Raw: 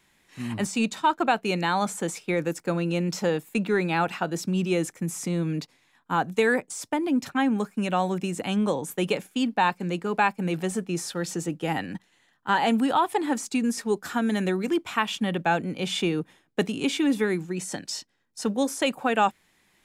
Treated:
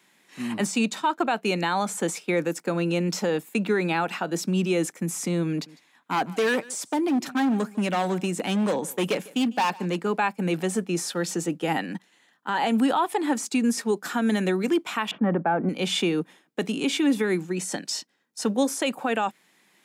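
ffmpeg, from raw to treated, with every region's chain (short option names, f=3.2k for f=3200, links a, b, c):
-filter_complex "[0:a]asettb=1/sr,asplit=3[a][b][c];[a]atrim=end=5.514[d];[b]atrim=start=5.51:end=9.99,asetpts=PTS-STARTPTS,afade=t=in:d=0.004:c=qsin,afade=t=out:st=4.476:d=0.004:c=qsin,volume=22.5dB,asoftclip=hard,volume=-22.5dB,aecho=1:1:151:0.0841,atrim=end_sample=197568[e];[c]atrim=start=9.986[f];[d][e]acrossfade=d=0.004:c1=hsin:c2=qsin[g];[g][f]acrossfade=d=0.004:c1=qsin:c2=hsin,asettb=1/sr,asplit=3[h][i][j];[h]atrim=end=15.114[k];[i]atrim=start=15.11:end=15.69,asetpts=PTS-STARTPTS,afade=t=in:d=0.004:c=qsin,afade=t=out:st=0.576:d=0.004:c=qsin,aeval=exprs='if(lt(val(0),0),0.708*val(0),val(0))':c=same,lowpass=f=1.5k:w=0.5412,lowpass=f=1.5k:w=1.3066,acontrast=75[l];[j]atrim=start=15.686[m];[k][l]acrossfade=d=0.004:c1=hsin:c2=qsin[n];[n][m]acrossfade=d=0.004:c1=qsin:c2=hsin,alimiter=limit=-17dB:level=0:latency=1:release=106,highpass=f=170:w=0.5412,highpass=f=170:w=1.3066,volume=3dB"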